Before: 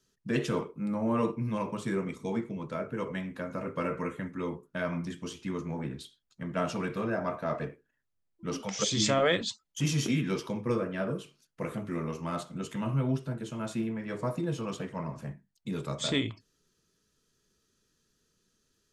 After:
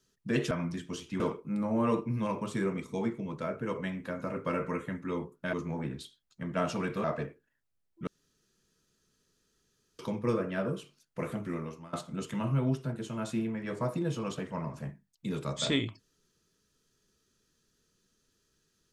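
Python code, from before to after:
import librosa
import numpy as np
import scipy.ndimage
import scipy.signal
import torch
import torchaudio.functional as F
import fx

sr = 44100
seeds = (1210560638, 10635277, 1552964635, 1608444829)

y = fx.edit(x, sr, fx.move(start_s=4.84, length_s=0.69, to_s=0.51),
    fx.cut(start_s=7.04, length_s=0.42),
    fx.room_tone_fill(start_s=8.49, length_s=1.92),
    fx.fade_out_to(start_s=11.86, length_s=0.49, floor_db=-22.5), tone=tone)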